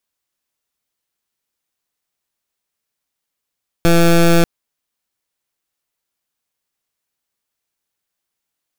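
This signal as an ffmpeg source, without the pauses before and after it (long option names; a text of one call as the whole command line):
ffmpeg -f lavfi -i "aevalsrc='0.316*(2*lt(mod(169*t,1),0.17)-1)':duration=0.59:sample_rate=44100" out.wav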